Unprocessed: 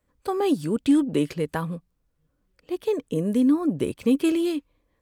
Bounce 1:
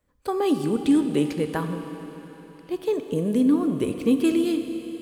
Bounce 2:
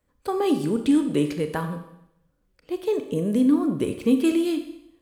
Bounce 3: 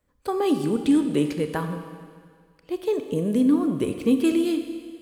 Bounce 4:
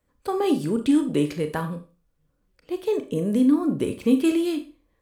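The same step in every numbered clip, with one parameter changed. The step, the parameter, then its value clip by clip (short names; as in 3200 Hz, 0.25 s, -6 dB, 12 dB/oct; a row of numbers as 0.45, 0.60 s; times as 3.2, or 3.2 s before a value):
Schroeder reverb, RT60: 4, 0.8, 1.9, 0.33 s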